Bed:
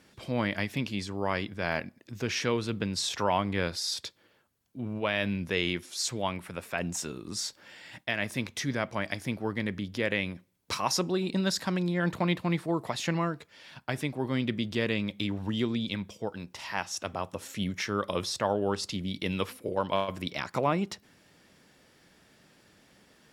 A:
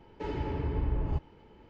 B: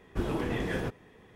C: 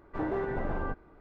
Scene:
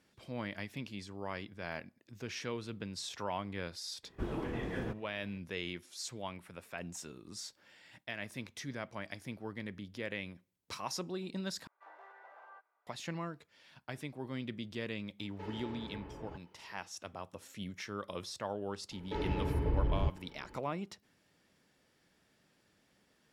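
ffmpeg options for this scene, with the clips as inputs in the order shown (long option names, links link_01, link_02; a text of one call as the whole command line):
ffmpeg -i bed.wav -i cue0.wav -i cue1.wav -i cue2.wav -filter_complex "[1:a]asplit=2[link_01][link_02];[0:a]volume=-11dB[link_03];[2:a]highshelf=frequency=4900:gain=-8[link_04];[3:a]highpass=frequency=710:width=0.5412,highpass=frequency=710:width=1.3066[link_05];[link_01]highpass=frequency=400:poles=1[link_06];[link_03]asplit=2[link_07][link_08];[link_07]atrim=end=11.674[link_09];[link_05]atrim=end=1.2,asetpts=PTS-STARTPTS,volume=-15.5dB[link_10];[link_08]atrim=start=12.866[link_11];[link_04]atrim=end=1.35,asetpts=PTS-STARTPTS,volume=-6.5dB,afade=type=in:duration=0.004:curve=hsin,afade=type=out:start_time=1.346:duration=0.004:curve=hsin,adelay=4030[link_12];[link_06]atrim=end=1.69,asetpts=PTS-STARTPTS,volume=-7dB,afade=type=in:duration=0.004:curve=hsin,afade=type=out:start_time=1.686:duration=0.004:curve=hsin,adelay=15190[link_13];[link_02]atrim=end=1.69,asetpts=PTS-STARTPTS,volume=-1dB,afade=type=in:duration=0.004:curve=hsin,afade=type=out:start_time=1.686:duration=0.004:curve=hsin,adelay=18910[link_14];[link_09][link_10]acrossfade=duration=0.004:curve1=hsin:curve2=hsin[link_15];[link_15][link_11]acrossfade=duration=0.004:curve1=hsin:curve2=hsin[link_16];[link_16][link_12][link_13][link_14]amix=inputs=4:normalize=0" out.wav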